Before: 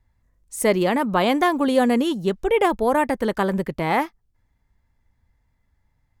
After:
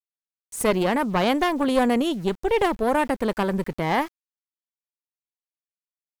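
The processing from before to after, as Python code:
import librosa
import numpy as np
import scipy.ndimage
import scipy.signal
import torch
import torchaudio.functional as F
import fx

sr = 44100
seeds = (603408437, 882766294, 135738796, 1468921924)

y = fx.diode_clip(x, sr, knee_db=-22.5)
y = np.where(np.abs(y) >= 10.0 ** (-43.0 / 20.0), y, 0.0)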